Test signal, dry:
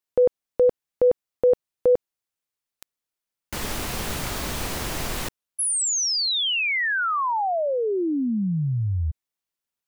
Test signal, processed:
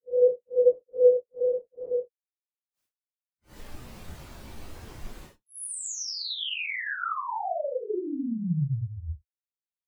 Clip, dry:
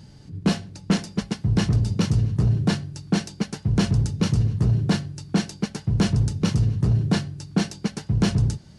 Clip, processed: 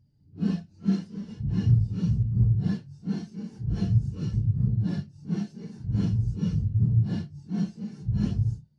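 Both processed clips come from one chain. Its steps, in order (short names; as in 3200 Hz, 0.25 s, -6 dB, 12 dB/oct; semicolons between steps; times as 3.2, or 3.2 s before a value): phase scrambler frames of 0.2 s; spectral expander 1.5:1; gain -1.5 dB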